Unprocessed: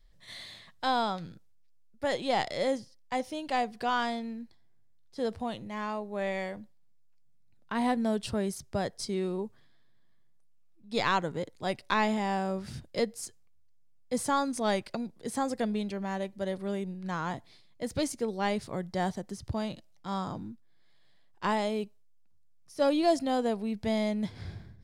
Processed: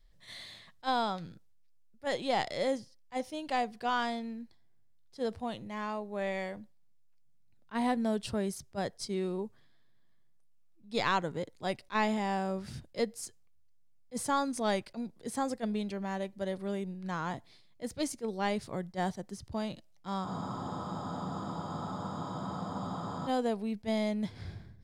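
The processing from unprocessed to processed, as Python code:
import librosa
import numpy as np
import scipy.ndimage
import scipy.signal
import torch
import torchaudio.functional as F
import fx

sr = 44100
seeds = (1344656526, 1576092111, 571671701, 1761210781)

y = fx.spec_freeze(x, sr, seeds[0], at_s=20.27, hold_s=3.0)
y = fx.attack_slew(y, sr, db_per_s=440.0)
y = y * librosa.db_to_amplitude(-2.0)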